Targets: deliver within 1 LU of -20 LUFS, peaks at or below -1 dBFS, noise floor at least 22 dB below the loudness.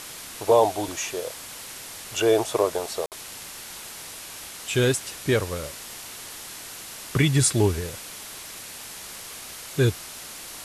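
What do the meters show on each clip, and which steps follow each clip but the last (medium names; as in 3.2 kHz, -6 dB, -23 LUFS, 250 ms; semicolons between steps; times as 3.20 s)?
dropouts 1; longest dropout 58 ms; noise floor -40 dBFS; noise floor target -49 dBFS; loudness -27.0 LUFS; peak level -8.0 dBFS; loudness target -20.0 LUFS
-> interpolate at 3.06 s, 58 ms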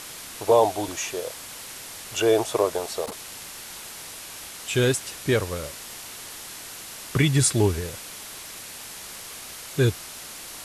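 dropouts 0; noise floor -40 dBFS; noise floor target -49 dBFS
-> noise reduction 9 dB, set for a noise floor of -40 dBFS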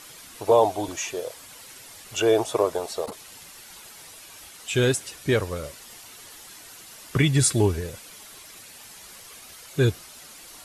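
noise floor -46 dBFS; loudness -24.0 LUFS; peak level -8.0 dBFS; loudness target -20.0 LUFS
-> trim +4 dB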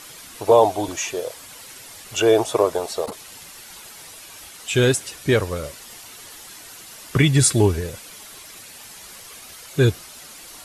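loudness -20.0 LUFS; peak level -4.0 dBFS; noise floor -42 dBFS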